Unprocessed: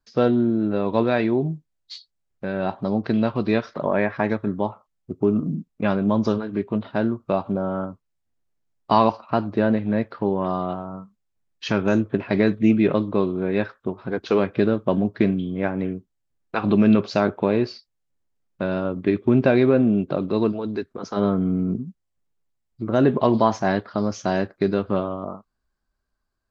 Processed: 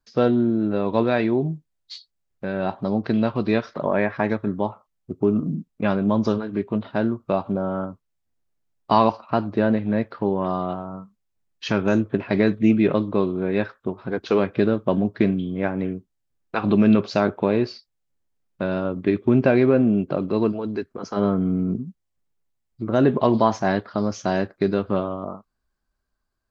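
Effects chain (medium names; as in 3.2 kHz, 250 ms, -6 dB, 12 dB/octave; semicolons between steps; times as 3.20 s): 19.36–21.44 s: band-stop 3.7 kHz, Q 8.2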